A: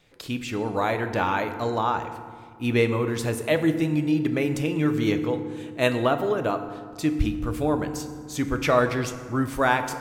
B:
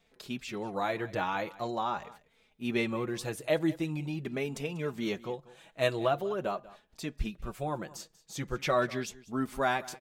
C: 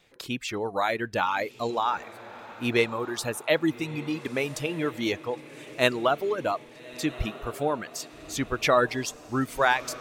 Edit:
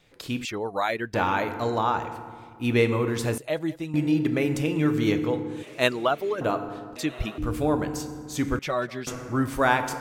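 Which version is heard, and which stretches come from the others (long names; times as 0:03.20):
A
0:00.45–0:01.14: punch in from C
0:03.38–0:03.94: punch in from B
0:05.63–0:06.41: punch in from C
0:06.96–0:07.38: punch in from C
0:08.59–0:09.07: punch in from B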